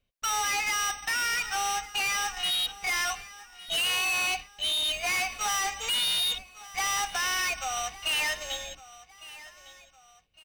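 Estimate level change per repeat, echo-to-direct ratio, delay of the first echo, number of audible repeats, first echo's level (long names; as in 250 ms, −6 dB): −8.0 dB, −17.5 dB, 1,157 ms, 2, −18.0 dB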